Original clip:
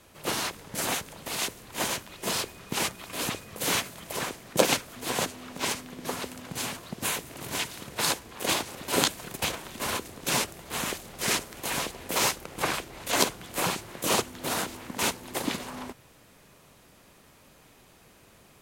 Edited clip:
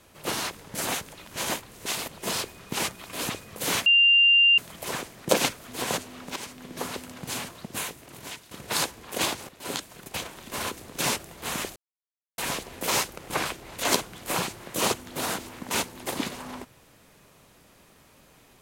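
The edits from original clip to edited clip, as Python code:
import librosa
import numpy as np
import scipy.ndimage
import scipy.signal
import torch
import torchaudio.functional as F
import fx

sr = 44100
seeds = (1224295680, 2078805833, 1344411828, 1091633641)

y = fx.edit(x, sr, fx.reverse_span(start_s=1.15, length_s=1.04),
    fx.insert_tone(at_s=3.86, length_s=0.72, hz=2790.0, db=-14.5),
    fx.fade_in_from(start_s=5.64, length_s=0.28, floor_db=-14.5),
    fx.fade_out_to(start_s=6.69, length_s=1.1, floor_db=-12.5),
    fx.fade_in_from(start_s=8.77, length_s=1.35, floor_db=-12.5),
    fx.silence(start_s=11.04, length_s=0.62), tone=tone)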